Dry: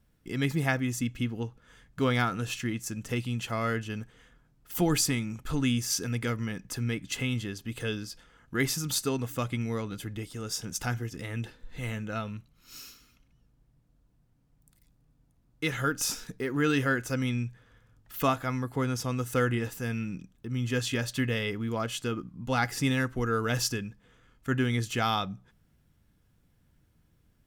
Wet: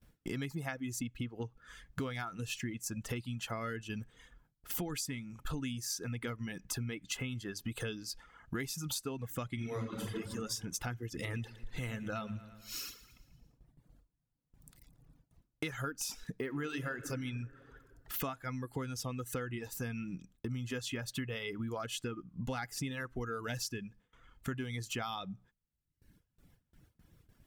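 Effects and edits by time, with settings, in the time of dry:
0:09.54–0:10.10: thrown reverb, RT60 1.9 s, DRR −4 dB
0:11.03–0:15.64: repeating echo 114 ms, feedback 55%, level −10.5 dB
0:16.43–0:17.06: thrown reverb, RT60 1.8 s, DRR 6 dB
whole clip: reverb reduction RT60 0.97 s; noise gate with hold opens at −58 dBFS; downward compressor 10 to 1, threshold −41 dBFS; level +5.5 dB

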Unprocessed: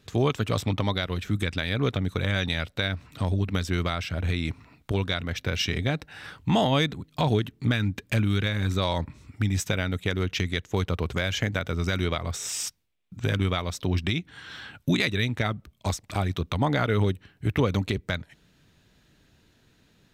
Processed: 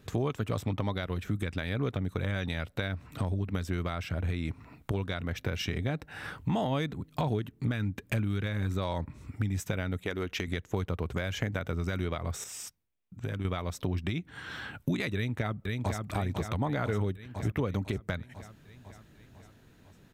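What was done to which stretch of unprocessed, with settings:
0:10.05–0:10.48: parametric band 120 Hz −13.5 dB 1.2 octaves
0:12.44–0:13.45: clip gain −9.5 dB
0:15.15–0:15.99: delay throw 500 ms, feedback 60%, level −5 dB
whole clip: parametric band 4,300 Hz −8 dB 1.9 octaves; downward compressor 2.5 to 1, threshold −36 dBFS; level +4 dB

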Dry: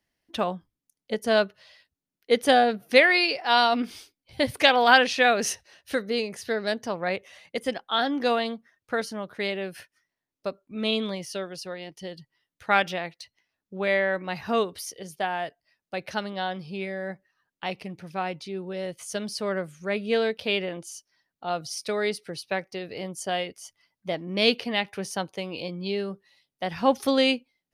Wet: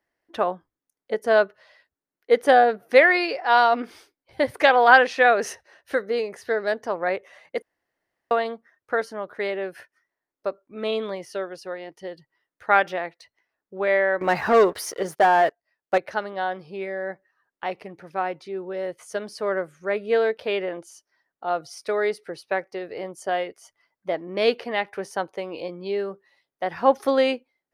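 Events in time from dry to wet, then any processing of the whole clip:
0:07.62–0:08.31: fill with room tone
0:14.21–0:15.98: leveller curve on the samples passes 3
whole clip: flat-topped bell 790 Hz +11 dB 3 octaves; level −7 dB

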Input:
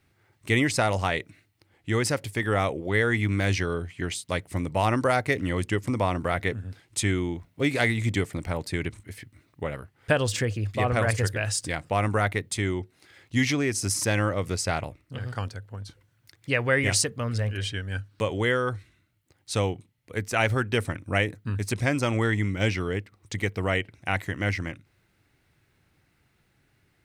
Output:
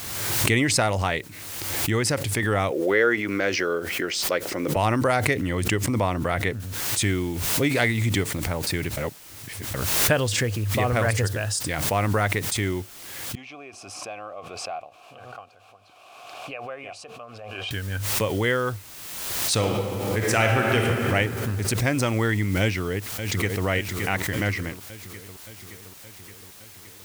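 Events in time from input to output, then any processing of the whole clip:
0:02.71–0:04.76: loudspeaker in its box 290–6,100 Hz, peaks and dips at 360 Hz +5 dB, 520 Hz +8 dB, 890 Hz −3 dB, 1,400 Hz +6 dB, 3,700 Hz −6 dB, 5,300 Hz +4 dB
0:06.60: noise floor change −58 dB −48 dB
0:08.97–0:09.74: reverse
0:11.21–0:11.62: parametric band 2,200 Hz −8 dB 0.43 octaves
0:13.35–0:17.71: formant filter a
0:19.52–0:21.06: thrown reverb, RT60 2.4 s, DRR 0 dB
0:22.61–0:23.65: delay throw 570 ms, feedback 70%, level −10.5 dB
whole clip: background raised ahead of every attack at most 33 dB per second; level +1 dB

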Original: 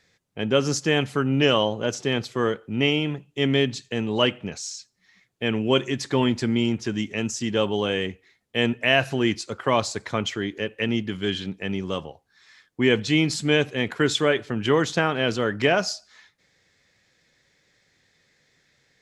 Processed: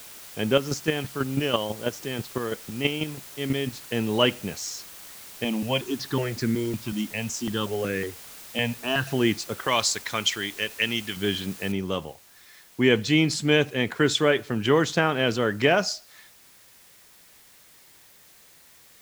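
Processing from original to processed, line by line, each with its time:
0:00.55–0:03.88: square-wave tremolo 6.1 Hz, depth 60%, duty 15%
0:05.44–0:09.07: step-sequenced phaser 5.4 Hz 410–3,100 Hz
0:09.67–0:11.17: tilt shelving filter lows −8.5 dB, about 1,300 Hz
0:11.72: noise floor change −44 dB −54 dB

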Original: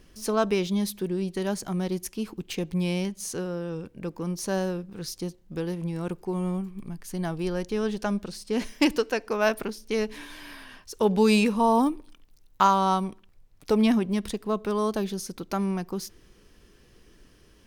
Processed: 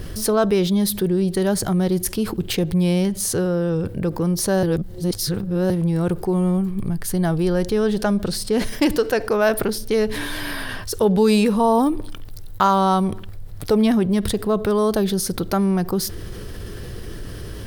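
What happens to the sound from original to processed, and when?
0:04.63–0:05.70: reverse
whole clip: graphic EQ with 15 bands 100 Hz +9 dB, 250 Hz −5 dB, 1,000 Hz −5 dB, 2,500 Hz −8 dB, 6,300 Hz −8 dB; envelope flattener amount 50%; level +5.5 dB

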